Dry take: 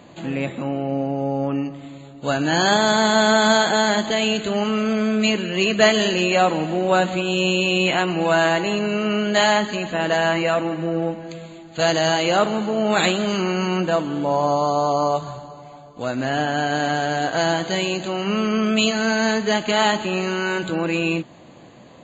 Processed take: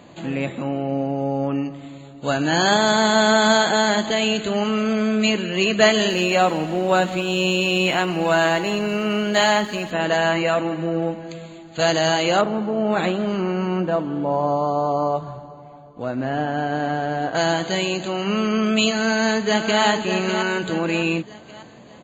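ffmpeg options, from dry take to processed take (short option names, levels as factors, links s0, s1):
-filter_complex "[0:a]asettb=1/sr,asplit=3[s0][s1][s2];[s0]atrim=end=6.094[s3];[s1]atrim=start=6.09:end=9.91,asetpts=PTS-STARTPTS,afade=t=in:d=0.004:c=qsin,afade=t=out:st=3.816:d=0.004:c=qsin,aeval=exprs='sgn(val(0))*max(abs(val(0))-0.00708,0)':c=same[s4];[s2]atrim=start=9.906[s5];[s3][s4]acrossfade=d=0.004:c1=hsin:c2=qsin[s6];[s6][s5]acrossfade=d=0.004:c1=qsin:c2=hsin,asettb=1/sr,asplit=3[s7][s8][s9];[s7]atrim=end=12.414[s10];[s8]atrim=start=12.41:end=17.35,asetpts=PTS-STARTPTS,afade=t=in:d=0.004:c=qsin,afade=t=out:st=4.936:d=0.004:c=qsin,lowpass=f=1100:p=1[s11];[s9]atrim=start=17.346[s12];[s10][s11]acrossfade=d=0.004:c1=hsin:c2=qsin[s13];[s13][s12]acrossfade=d=0.004:c1=qsin:c2=hsin,asplit=2[s14][s15];[s15]afade=t=in:st=18.89:d=0.01,afade=t=out:st=19.82:d=0.01,aecho=0:1:600|1200|1800|2400|3000:0.446684|0.178673|0.0714694|0.0285877|0.0114351[s16];[s14][s16]amix=inputs=2:normalize=0"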